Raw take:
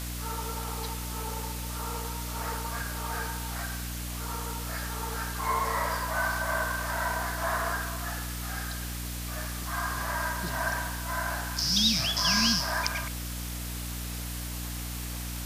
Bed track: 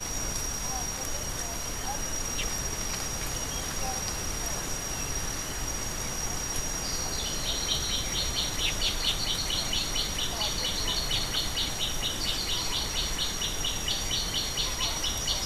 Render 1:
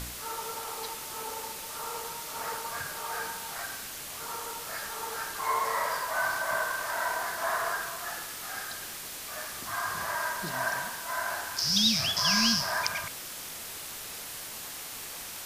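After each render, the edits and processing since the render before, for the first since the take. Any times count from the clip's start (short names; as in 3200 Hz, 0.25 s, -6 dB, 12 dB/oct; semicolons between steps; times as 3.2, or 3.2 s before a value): de-hum 60 Hz, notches 5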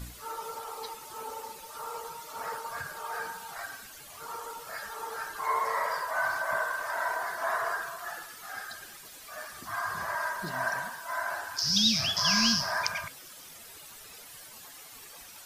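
denoiser 12 dB, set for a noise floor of -41 dBFS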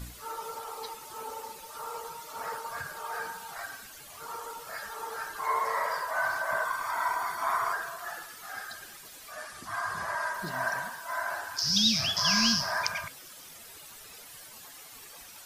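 6.65–7.73 comb 0.9 ms; 9.32–10.34 steep low-pass 12000 Hz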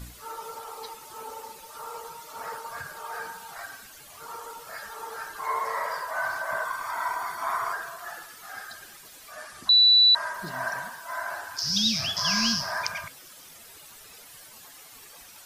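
9.69–10.15 bleep 3960 Hz -13.5 dBFS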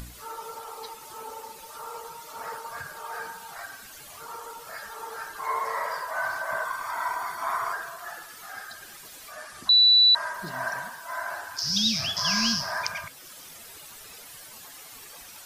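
upward compressor, threshold -39 dBFS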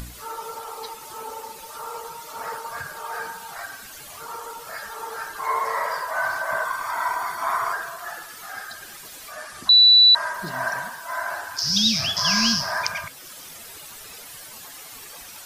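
gain +4.5 dB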